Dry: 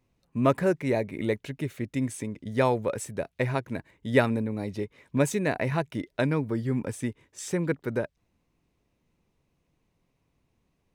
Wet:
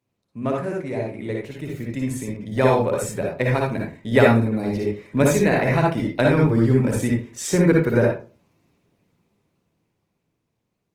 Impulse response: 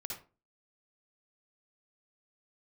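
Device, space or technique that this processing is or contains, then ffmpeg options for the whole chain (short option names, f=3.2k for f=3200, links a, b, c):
far-field microphone of a smart speaker: -filter_complex "[1:a]atrim=start_sample=2205[a];[0:a][a]afir=irnorm=-1:irlink=0,highpass=f=89:w=0.5412,highpass=f=89:w=1.3066,dynaudnorm=f=240:g=17:m=15.5dB" -ar 48000 -c:a libopus -b:a 20k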